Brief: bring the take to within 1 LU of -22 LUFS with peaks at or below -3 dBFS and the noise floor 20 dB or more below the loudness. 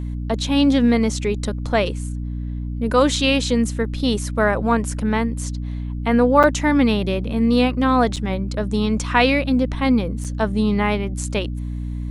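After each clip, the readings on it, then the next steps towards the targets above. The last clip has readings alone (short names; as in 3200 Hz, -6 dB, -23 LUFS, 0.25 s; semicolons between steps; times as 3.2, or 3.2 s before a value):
dropouts 3; longest dropout 6.6 ms; hum 60 Hz; harmonics up to 300 Hz; hum level -24 dBFS; loudness -20.0 LUFS; peak -1.5 dBFS; loudness target -22.0 LUFS
-> interpolate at 6.43/8.16/10.24, 6.6 ms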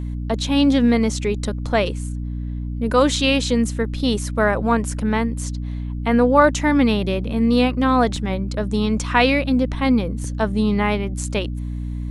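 dropouts 0; hum 60 Hz; harmonics up to 300 Hz; hum level -24 dBFS
-> de-hum 60 Hz, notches 5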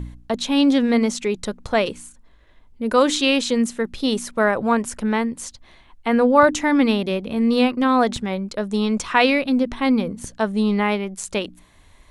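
hum none; loudness -20.0 LUFS; peak -2.0 dBFS; loudness target -22.0 LUFS
-> gain -2 dB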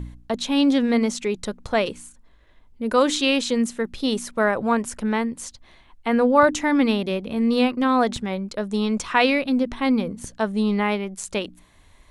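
loudness -22.0 LUFS; peak -4.0 dBFS; noise floor -54 dBFS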